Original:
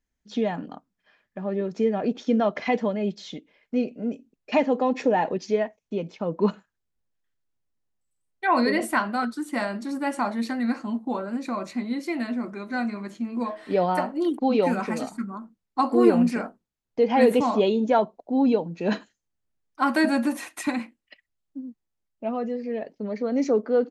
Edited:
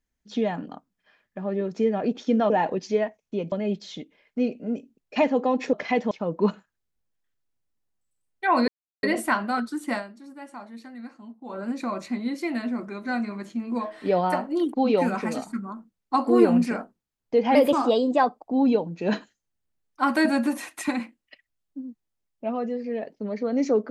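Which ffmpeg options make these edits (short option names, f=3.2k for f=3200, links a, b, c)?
-filter_complex "[0:a]asplit=10[a][b][c][d][e][f][g][h][i][j];[a]atrim=end=2.502[k];[b]atrim=start=5.088:end=6.112[l];[c]atrim=start=2.878:end=5.092[m];[d]atrim=start=2.498:end=2.882[n];[e]atrim=start=6.108:end=8.68,asetpts=PTS-STARTPTS,afade=t=out:st=2.568:d=0.004:c=hsin,apad=pad_dur=0.35[o];[f]atrim=start=8.68:end=9.78,asetpts=PTS-STARTPTS,afade=t=in:d=0.004:c=hsin,afade=t=out:st=0.91:d=0.19:c=qua:silence=0.188365[p];[g]atrim=start=9.78:end=11.06,asetpts=PTS-STARTPTS,volume=-14.5dB[q];[h]atrim=start=11.06:end=17.204,asetpts=PTS-STARTPTS,afade=t=in:d=0.19:c=qua:silence=0.188365[r];[i]atrim=start=17.2:end=18.31,asetpts=PTS-STARTPTS,asetrate=50715,aresample=44100,atrim=end_sample=42566,asetpts=PTS-STARTPTS[s];[j]atrim=start=18.306[t];[k][l]acrossfade=d=0.004:c1=hsin:c2=hsin[u];[u][m]acrossfade=d=0.004:c1=hsin:c2=hsin[v];[v][n]acrossfade=d=0.004:c1=hsin:c2=hsin[w];[o][p][q][r]concat=n=4:v=0:a=1[x];[w][x]acrossfade=d=0.004:c1=hsin:c2=hsin[y];[y][s]acrossfade=d=0.004:c1=hsin:c2=hsin[z];[z][t]acrossfade=d=0.004:c1=hsin:c2=hsin"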